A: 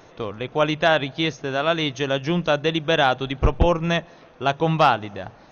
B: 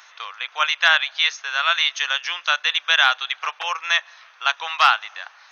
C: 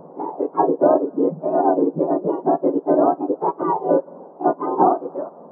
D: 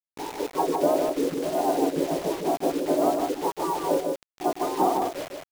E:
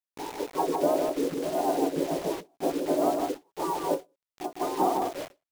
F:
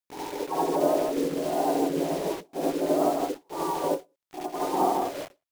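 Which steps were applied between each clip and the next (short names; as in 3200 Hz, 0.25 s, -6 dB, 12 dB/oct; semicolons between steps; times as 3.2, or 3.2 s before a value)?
HPF 1200 Hz 24 dB/oct; gain +7.5 dB
spectrum mirrored in octaves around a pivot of 1000 Hz; compressor 2:1, threshold -22 dBFS, peak gain reduction 7 dB; ten-band EQ 500 Hz +9 dB, 1000 Hz +11 dB, 2000 Hz -9 dB; gain -1.5 dB
bit-crush 5-bit; echo 0.154 s -4 dB; gain -7.5 dB
ending taper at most 320 dB/s; gain -2.5 dB
reverse echo 71 ms -4.5 dB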